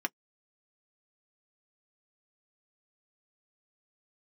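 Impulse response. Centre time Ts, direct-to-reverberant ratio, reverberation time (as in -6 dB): 3 ms, 4.5 dB, no single decay rate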